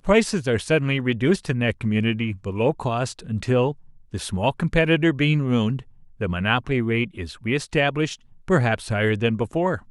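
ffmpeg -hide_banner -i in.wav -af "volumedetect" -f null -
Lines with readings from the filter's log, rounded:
mean_volume: -22.3 dB
max_volume: -5.0 dB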